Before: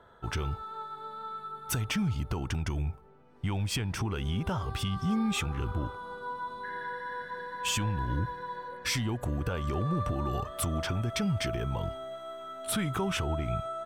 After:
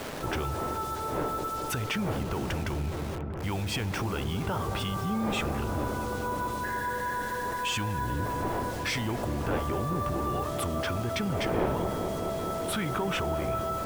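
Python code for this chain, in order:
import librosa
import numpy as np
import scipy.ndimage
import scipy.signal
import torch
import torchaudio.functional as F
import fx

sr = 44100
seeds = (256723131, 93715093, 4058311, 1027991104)

y = fx.dmg_wind(x, sr, seeds[0], corner_hz=520.0, level_db=-39.0)
y = fx.bass_treble(y, sr, bass_db=-6, treble_db=-8)
y = fx.quant_dither(y, sr, seeds[1], bits=8, dither='none')
y = fx.echo_wet_lowpass(y, sr, ms=213, feedback_pct=82, hz=1100.0, wet_db=-10.0)
y = fx.env_flatten(y, sr, amount_pct=50)
y = y * 10.0 ** (-2.0 / 20.0)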